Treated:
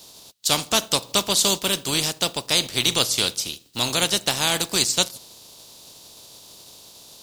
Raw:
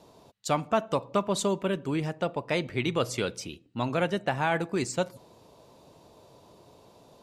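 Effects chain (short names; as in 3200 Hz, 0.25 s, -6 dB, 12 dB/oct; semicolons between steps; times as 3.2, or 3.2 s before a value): spectral contrast lowered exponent 0.52; resonant high shelf 2800 Hz +10 dB, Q 1.5; gain +2 dB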